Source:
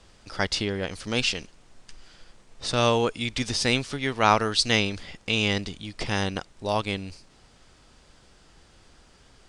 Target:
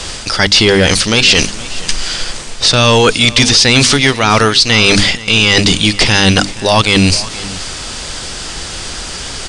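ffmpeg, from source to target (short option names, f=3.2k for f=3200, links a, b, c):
-filter_complex "[0:a]acrossover=split=6000[a][b];[b]acompressor=threshold=-47dB:ratio=4:attack=1:release=60[c];[a][c]amix=inputs=2:normalize=0,highshelf=f=2.3k:g=10.5,bandreject=f=50:t=h:w=6,bandreject=f=100:t=h:w=6,bandreject=f=150:t=h:w=6,bandreject=f=200:t=h:w=6,bandreject=f=250:t=h:w=6,bandreject=f=300:t=h:w=6,areverse,acompressor=threshold=-31dB:ratio=5,areverse,apsyclip=30.5dB,asplit=2[d][e];[e]aecho=0:1:472:0.126[f];[d][f]amix=inputs=2:normalize=0,aresample=22050,aresample=44100,volume=-2.5dB"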